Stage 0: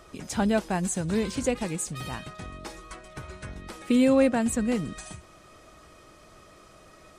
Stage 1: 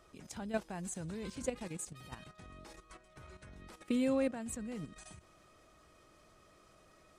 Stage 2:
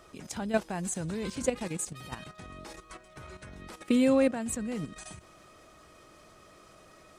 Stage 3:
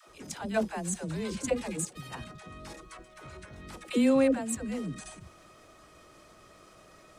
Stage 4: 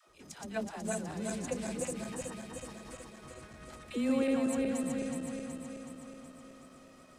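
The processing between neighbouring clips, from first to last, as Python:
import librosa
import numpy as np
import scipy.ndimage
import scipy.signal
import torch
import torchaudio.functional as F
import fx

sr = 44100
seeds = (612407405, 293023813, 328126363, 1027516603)

y1 = fx.level_steps(x, sr, step_db=11)
y1 = y1 * 10.0 ** (-8.5 / 20.0)
y2 = fx.low_shelf(y1, sr, hz=80.0, db=-5.5)
y2 = y2 * 10.0 ** (8.5 / 20.0)
y3 = fx.dispersion(y2, sr, late='lows', ms=87.0, hz=420.0)
y4 = fx.reverse_delay_fb(y3, sr, ms=186, feedback_pct=77, wet_db=-1.5)
y4 = y4 * 10.0 ** (-8.5 / 20.0)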